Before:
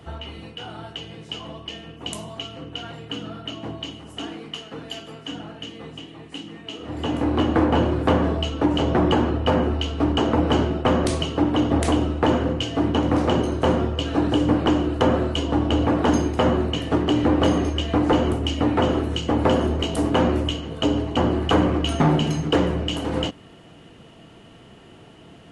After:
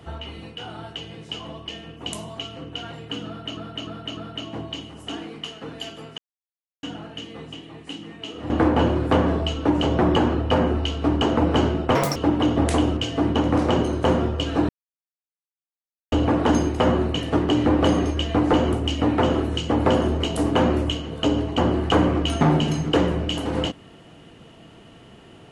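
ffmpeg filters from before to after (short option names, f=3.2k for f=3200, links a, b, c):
-filter_complex "[0:a]asplit=11[a][b][c][d][e][f][g][h][i][j][k];[a]atrim=end=3.572[l];[b]atrim=start=3.268:end=3.572[m];[c]atrim=start=3.268:end=3.572[n];[d]atrim=start=3.268:end=5.28,asetpts=PTS-STARTPTS,afade=t=out:st=2.008:d=0.004:c=hsin,apad=pad_dur=0.65[o];[e]atrim=start=5.28:end=6.952,asetpts=PTS-STARTPTS,afade=t=in:d=0.004:c=hsin[p];[f]atrim=start=7.458:end=10.914[q];[g]atrim=start=10.91:end=11.3,asetpts=PTS-STARTPTS,asetrate=82026,aresample=44100[r];[h]atrim=start=11.296:end=12.112[s];[i]atrim=start=12.558:end=14.28,asetpts=PTS-STARTPTS,afade=t=out:st=1.718:d=0.004:c=hsin[t];[j]atrim=start=14.28:end=15.71,asetpts=PTS-STARTPTS,volume=0[u];[k]atrim=start=15.71,asetpts=PTS-STARTPTS,afade=t=in:d=0.004:c=hsin[v];[l][m]acrossfade=d=0.004:c1=hsin:c2=hsin[w];[w][n]acrossfade=d=0.004:c1=hsin:c2=hsin[x];[o][p]concat=n=2:v=0:a=1[y];[x][y]acrossfade=d=0.004:c1=hsin:c2=hsin[z];[z][q]acrossfade=d=0.004:c1=hsin:c2=hsin[aa];[aa][r]acrossfade=d=0.004:c1=hsin:c2=hsin[ab];[ab][s]acrossfade=d=0.004:c1=hsin:c2=hsin[ac];[t][u][v]concat=n=3:v=0:a=1[ad];[ac][ad]acrossfade=d=0.004:c1=hsin:c2=hsin"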